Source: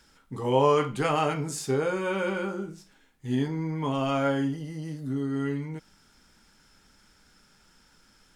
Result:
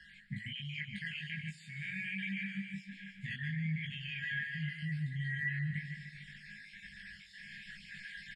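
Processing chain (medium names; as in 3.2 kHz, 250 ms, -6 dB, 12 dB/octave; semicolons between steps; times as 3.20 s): random holes in the spectrogram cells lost 32%; recorder AGC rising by 5.5 dB/s; brick-wall FIR band-stop 220–1600 Hz; feedback delay 150 ms, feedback 58%, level -13.5 dB; flange 1.3 Hz, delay 0.3 ms, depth 9.6 ms, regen +81%; peak limiter -32.5 dBFS, peak gain reduction 8.5 dB; tilt EQ +4.5 dB/octave; compression 2.5:1, threshold -53 dBFS, peak gain reduction 16.5 dB; low-pass 5.8 kHz 24 dB/octave; resonant high shelf 2.3 kHz -13.5 dB, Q 1.5; static phaser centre 2.6 kHz, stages 4; doubling 20 ms -2 dB; trim +16.5 dB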